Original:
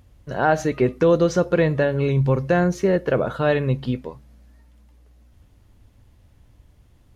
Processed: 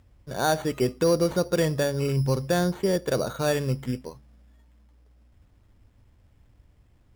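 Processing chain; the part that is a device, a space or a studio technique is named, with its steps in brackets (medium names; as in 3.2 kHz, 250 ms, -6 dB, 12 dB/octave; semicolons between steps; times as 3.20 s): crushed at another speed (playback speed 0.5×; sample-and-hold 17×; playback speed 2×); trim -5 dB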